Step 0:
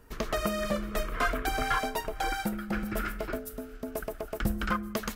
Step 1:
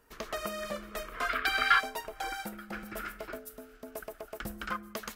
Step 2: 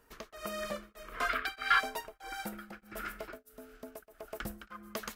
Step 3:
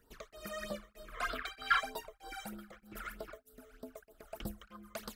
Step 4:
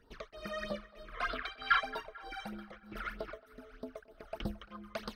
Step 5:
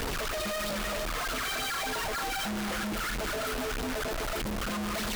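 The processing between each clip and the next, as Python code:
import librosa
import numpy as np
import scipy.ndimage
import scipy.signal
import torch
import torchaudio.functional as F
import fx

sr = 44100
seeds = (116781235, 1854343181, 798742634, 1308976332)

y1 = fx.spec_box(x, sr, start_s=1.3, length_s=0.5, low_hz=1100.0, high_hz=5400.0, gain_db=11)
y1 = fx.low_shelf(y1, sr, hz=280.0, db=-11.5)
y1 = F.gain(torch.from_numpy(y1), -4.0).numpy()
y2 = y1 * np.abs(np.cos(np.pi * 1.6 * np.arange(len(y1)) / sr))
y3 = fx.phaser_stages(y2, sr, stages=12, low_hz=250.0, high_hz=2300.0, hz=3.2, feedback_pct=30)
y3 = F.gain(torch.from_numpy(y3), -1.0).numpy()
y4 = fx.rider(y3, sr, range_db=4, speed_s=2.0)
y4 = scipy.signal.savgol_filter(y4, 15, 4, mode='constant')
y4 = fx.echo_banded(y4, sr, ms=222, feedback_pct=56, hz=1400.0, wet_db=-18.0)
y5 = np.sign(y4) * np.sqrt(np.mean(np.square(y4)))
y5 = F.gain(torch.from_numpy(y5), 8.0).numpy()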